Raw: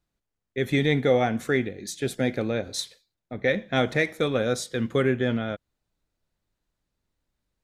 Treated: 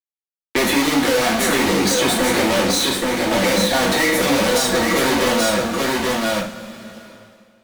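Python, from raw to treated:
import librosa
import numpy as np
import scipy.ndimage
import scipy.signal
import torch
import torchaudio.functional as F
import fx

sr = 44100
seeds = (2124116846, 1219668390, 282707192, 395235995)

y = fx.spec_quant(x, sr, step_db=15)
y = scipy.signal.sosfilt(scipy.signal.butter(12, 180.0, 'highpass', fs=sr, output='sos'), y)
y = fx.fuzz(y, sr, gain_db=49.0, gate_db=-55.0)
y = y + 10.0 ** (-5.0 / 20.0) * np.pad(y, (int(831 * sr / 1000.0), 0))[:len(y)]
y = fx.rev_double_slope(y, sr, seeds[0], early_s=0.34, late_s=1.7, knee_db=-18, drr_db=-3.5)
y = fx.band_squash(y, sr, depth_pct=70)
y = y * librosa.db_to_amplitude(-8.5)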